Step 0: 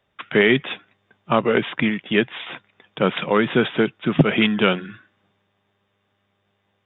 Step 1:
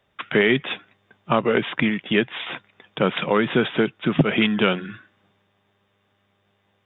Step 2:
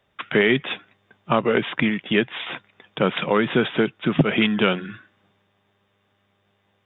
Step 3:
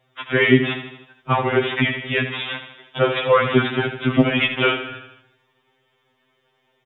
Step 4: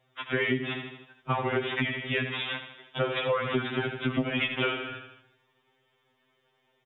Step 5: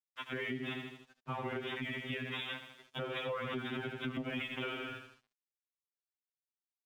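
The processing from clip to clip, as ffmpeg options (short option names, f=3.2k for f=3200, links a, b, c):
-af "acompressor=threshold=-24dB:ratio=1.5,volume=2.5dB"
-af anull
-af "aecho=1:1:79|158|237|316|395|474:0.316|0.177|0.0992|0.0555|0.0311|0.0174,afftfilt=real='re*2.45*eq(mod(b,6),0)':imag='im*2.45*eq(mod(b,6),0)':win_size=2048:overlap=0.75,volume=5dB"
-af "acompressor=threshold=-19dB:ratio=6,volume=-5dB"
-af "alimiter=level_in=0.5dB:limit=-24dB:level=0:latency=1:release=158,volume=-0.5dB,aeval=exprs='sgn(val(0))*max(abs(val(0))-0.00133,0)':c=same,equalizer=f=230:t=o:w=0.38:g=4,volume=-5dB"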